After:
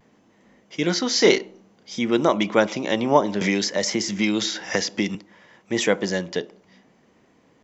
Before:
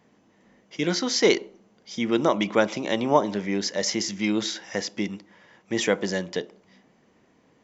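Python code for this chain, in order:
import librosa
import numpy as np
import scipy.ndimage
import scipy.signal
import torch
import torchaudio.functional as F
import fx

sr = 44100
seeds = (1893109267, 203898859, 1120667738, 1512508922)

y = fx.vibrato(x, sr, rate_hz=0.58, depth_cents=28.0)
y = fx.doubler(y, sr, ms=31.0, db=-6.5, at=(1.14, 1.99))
y = fx.band_squash(y, sr, depth_pct=100, at=(3.41, 5.15))
y = F.gain(torch.from_numpy(y), 2.5).numpy()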